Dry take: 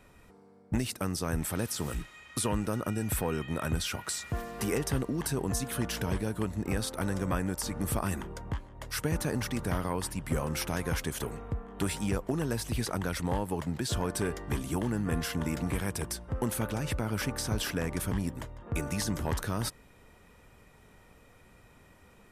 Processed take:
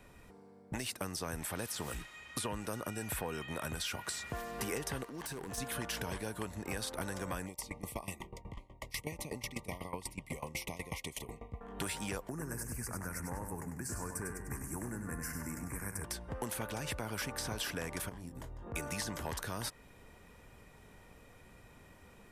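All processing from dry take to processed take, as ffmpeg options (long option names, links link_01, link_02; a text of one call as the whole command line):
ffmpeg -i in.wav -filter_complex "[0:a]asettb=1/sr,asplit=3[link_01][link_02][link_03];[link_01]atrim=end=5.044[link_04];[link_02]atrim=start=5.04:end=5.58,asetpts=PTS-STARTPTS,afade=type=in:duration=0.004:curve=qsin,afade=type=out:start_time=0.536:duration=0.004:curve=qsin,lowshelf=frequency=210:gain=-10,acompressor=threshold=-35dB:ratio=6:attack=3.2:release=140:knee=1:detection=peak,aeval=exprs='0.0211*(abs(mod(val(0)/0.0211+3,4)-2)-1)':channel_layout=same[link_05];[link_03]atrim=start=5.576[link_06];[link_04][link_05]acrossfade=duration=0.004:curve1=hsin:curve2=qsin[link_07];[link_07][link_06]acrossfade=duration=0.004:curve1=qsin:curve2=hsin,asettb=1/sr,asplit=3[link_08][link_09][link_10];[link_08]atrim=end=7.464[link_11];[link_09]atrim=start=7.46:end=11.61,asetpts=PTS-STARTPTS,afade=type=in:duration=0.004:curve=qsin,afade=type=out:start_time=4.146:duration=0.004:curve=qsin,asuperstop=centerf=1500:order=20:qfactor=2.1,equalizer=frequency=2100:width_type=o:width=0.68:gain=6,aeval=exprs='val(0)*pow(10,-20*if(lt(mod(8.1*n/s,1),2*abs(8.1)/1000),1-mod(8.1*n/s,1)/(2*abs(8.1)/1000),(mod(8.1*n/s,1)-2*abs(8.1)/1000)/(1-2*abs(8.1)/1000))/20)':channel_layout=same[link_12];[link_10]atrim=start=11.606[link_13];[link_11][link_12]acrossfade=duration=0.004:curve1=hsin:curve2=qsin[link_14];[link_14][link_13]acrossfade=duration=0.004:curve1=qsin:curve2=hsin,asettb=1/sr,asplit=3[link_15][link_16][link_17];[link_15]atrim=end=12.294[link_18];[link_16]atrim=start=12.29:end=16.04,asetpts=PTS-STARTPTS,afade=type=in:duration=0.004:curve=qsin,afade=type=out:start_time=3.746:duration=0.004:curve=qsin,asuperstop=centerf=3500:order=4:qfactor=0.7,equalizer=frequency=650:width_type=o:width=1.8:gain=-11,aecho=1:1:98|196|294|392|490:0.447|0.188|0.0788|0.0331|0.0139,atrim=end_sample=165375[link_19];[link_17]atrim=start=16.036[link_20];[link_18][link_19]acrossfade=duration=0.004:curve1=hsin:curve2=qsin[link_21];[link_21][link_20]acrossfade=duration=0.004:curve1=qsin:curve2=hsin,asettb=1/sr,asplit=3[link_22][link_23][link_24];[link_22]atrim=end=18.094[link_25];[link_23]atrim=start=18.09:end=18.74,asetpts=PTS-STARTPTS,afade=type=in:duration=0.004:curve=qsin,afade=type=out:start_time=0.646:duration=0.004:curve=qsin,equalizer=frequency=2400:width=0.68:gain=-5.5,asplit=2[link_26][link_27];[link_27]adelay=23,volume=-7dB[link_28];[link_26][link_28]amix=inputs=2:normalize=0,atrim=end_sample=28665,acompressor=threshold=-42dB:ratio=2.5:attack=3.2:release=140:knee=1:detection=peak[link_29];[link_24]atrim=start=18.736[link_30];[link_25][link_29]acrossfade=duration=0.004:curve1=hsin:curve2=qsin[link_31];[link_31][link_30]acrossfade=duration=0.004:curve1=qsin:curve2=hsin,bandreject=frequency=1300:width=17,acrossover=split=500|3500[link_32][link_33][link_34];[link_32]acompressor=threshold=-42dB:ratio=4[link_35];[link_33]acompressor=threshold=-39dB:ratio=4[link_36];[link_34]acompressor=threshold=-40dB:ratio=4[link_37];[link_35][link_36][link_37]amix=inputs=3:normalize=0" out.wav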